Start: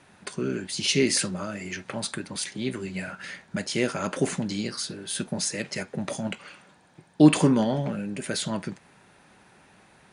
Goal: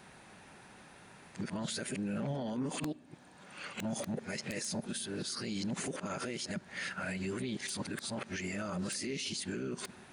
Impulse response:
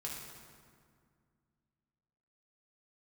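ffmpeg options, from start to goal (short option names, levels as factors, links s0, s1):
-filter_complex "[0:a]areverse,highshelf=f=5900:g=2.5,acompressor=threshold=0.0447:ratio=16,aeval=exprs='(mod(7.94*val(0)+1,2)-1)/7.94':c=same,alimiter=level_in=1.88:limit=0.0631:level=0:latency=1:release=55,volume=0.531,asplit=2[s0][s1];[1:a]atrim=start_sample=2205,asetrate=74970,aresample=44100,lowpass=7200[s2];[s1][s2]afir=irnorm=-1:irlink=0,volume=0.2[s3];[s0][s3]amix=inputs=2:normalize=0"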